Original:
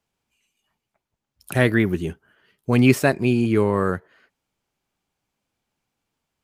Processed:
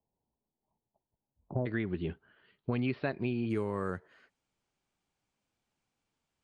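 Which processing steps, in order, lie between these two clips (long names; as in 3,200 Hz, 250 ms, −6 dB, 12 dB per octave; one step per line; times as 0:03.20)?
Butterworth low-pass 1,000 Hz 72 dB per octave, from 0:01.65 4,400 Hz, from 0:03.49 9,900 Hz
downward compressor 6 to 1, threshold −24 dBFS, peak gain reduction 13.5 dB
level −5 dB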